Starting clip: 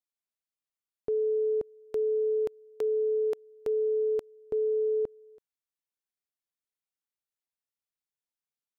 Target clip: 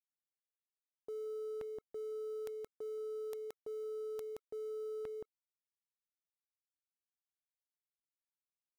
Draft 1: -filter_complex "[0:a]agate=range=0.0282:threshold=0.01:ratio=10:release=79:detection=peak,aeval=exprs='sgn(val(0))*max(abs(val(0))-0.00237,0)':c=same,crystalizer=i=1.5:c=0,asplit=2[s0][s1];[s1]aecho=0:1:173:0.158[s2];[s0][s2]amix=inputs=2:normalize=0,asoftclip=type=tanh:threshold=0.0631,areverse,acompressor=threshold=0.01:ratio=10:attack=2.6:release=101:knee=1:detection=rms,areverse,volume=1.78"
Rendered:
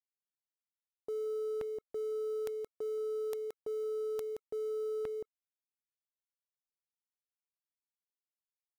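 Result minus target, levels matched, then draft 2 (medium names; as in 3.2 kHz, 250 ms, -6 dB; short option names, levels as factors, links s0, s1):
compression: peak gain reduction -6 dB
-filter_complex "[0:a]agate=range=0.0282:threshold=0.01:ratio=10:release=79:detection=peak,aeval=exprs='sgn(val(0))*max(abs(val(0))-0.00237,0)':c=same,crystalizer=i=1.5:c=0,asplit=2[s0][s1];[s1]aecho=0:1:173:0.158[s2];[s0][s2]amix=inputs=2:normalize=0,asoftclip=type=tanh:threshold=0.0631,areverse,acompressor=threshold=0.00473:ratio=10:attack=2.6:release=101:knee=1:detection=rms,areverse,volume=1.78"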